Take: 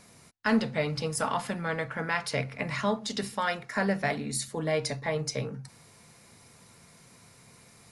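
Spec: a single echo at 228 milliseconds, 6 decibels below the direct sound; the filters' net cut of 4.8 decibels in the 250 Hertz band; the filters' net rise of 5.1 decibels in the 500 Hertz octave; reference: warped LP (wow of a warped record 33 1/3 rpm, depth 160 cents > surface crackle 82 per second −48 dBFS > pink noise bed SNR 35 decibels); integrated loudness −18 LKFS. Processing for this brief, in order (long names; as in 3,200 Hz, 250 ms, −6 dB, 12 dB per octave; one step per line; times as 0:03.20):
parametric band 250 Hz −8 dB
parametric band 500 Hz +8 dB
single-tap delay 228 ms −6 dB
wow of a warped record 33 1/3 rpm, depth 160 cents
surface crackle 82 per second −48 dBFS
pink noise bed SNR 35 dB
level +10 dB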